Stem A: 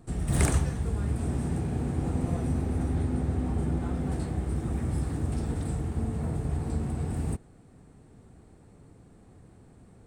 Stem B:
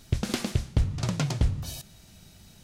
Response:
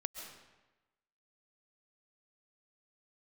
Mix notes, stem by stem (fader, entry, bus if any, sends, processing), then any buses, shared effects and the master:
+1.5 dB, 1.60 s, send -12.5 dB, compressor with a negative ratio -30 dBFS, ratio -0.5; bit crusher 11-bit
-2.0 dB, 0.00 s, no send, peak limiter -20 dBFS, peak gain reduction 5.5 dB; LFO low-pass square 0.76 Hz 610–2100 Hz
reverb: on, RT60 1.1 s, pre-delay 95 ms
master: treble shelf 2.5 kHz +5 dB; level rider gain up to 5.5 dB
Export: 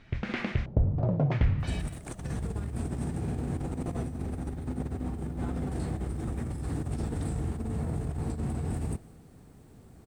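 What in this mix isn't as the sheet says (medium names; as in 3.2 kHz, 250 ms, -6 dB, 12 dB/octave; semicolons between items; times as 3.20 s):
stem A +1.5 dB -> -9.0 dB; master: missing treble shelf 2.5 kHz +5 dB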